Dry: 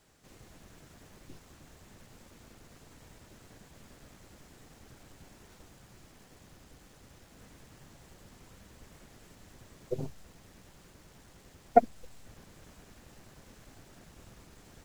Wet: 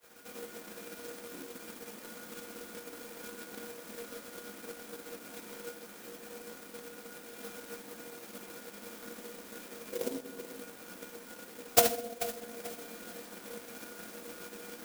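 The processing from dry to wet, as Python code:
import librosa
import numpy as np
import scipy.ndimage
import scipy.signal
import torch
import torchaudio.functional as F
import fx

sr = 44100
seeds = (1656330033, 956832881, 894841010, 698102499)

p1 = fx.auto_swell(x, sr, attack_ms=155.0)
p2 = 10.0 ** (-35.0 / 20.0) * np.tanh(p1 / 10.0 ** (-35.0 / 20.0))
p3 = p1 + (p2 * librosa.db_to_amplitude(-4.0))
p4 = fx.high_shelf(p3, sr, hz=3500.0, db=10.5)
p5 = p4 + fx.echo_feedback(p4, sr, ms=436, feedback_pct=45, wet_db=-12, dry=0)
p6 = np.repeat(scipy.signal.resample_poly(p5, 1, 8), 8)[:len(p5)]
p7 = scipy.signal.sosfilt(scipy.signal.butter(16, 180.0, 'highpass', fs=sr, output='sos'), p6)
p8 = fx.peak_eq(p7, sr, hz=6300.0, db=13.0, octaves=2.0)
p9 = fx.comb_fb(p8, sr, f0_hz=480.0, decay_s=0.29, harmonics='odd', damping=0.0, mix_pct=90)
p10 = fx.room_shoebox(p9, sr, seeds[0], volume_m3=480.0, walls='mixed', distance_m=5.2)
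p11 = fx.transient(p10, sr, attack_db=9, sustain_db=-5)
p12 = fx.clock_jitter(p11, sr, seeds[1], jitter_ms=0.077)
y = p12 * librosa.db_to_amplitude(8.0)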